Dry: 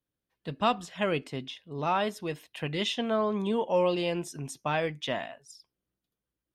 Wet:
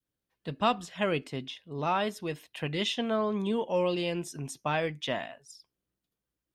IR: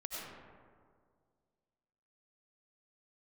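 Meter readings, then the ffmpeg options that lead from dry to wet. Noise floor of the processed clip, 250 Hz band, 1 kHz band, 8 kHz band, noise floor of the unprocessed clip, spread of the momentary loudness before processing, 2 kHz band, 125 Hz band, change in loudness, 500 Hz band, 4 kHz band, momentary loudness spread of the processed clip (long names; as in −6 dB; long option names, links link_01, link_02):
below −85 dBFS, −0.5 dB, −1.0 dB, 0.0 dB, below −85 dBFS, 12 LU, −0.5 dB, 0.0 dB, −1.0 dB, −1.5 dB, 0.0 dB, 10 LU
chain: -af "adynamicequalizer=threshold=0.01:dfrequency=800:dqfactor=0.93:tfrequency=800:tqfactor=0.93:attack=5:release=100:ratio=0.375:range=2.5:mode=cutabove:tftype=bell"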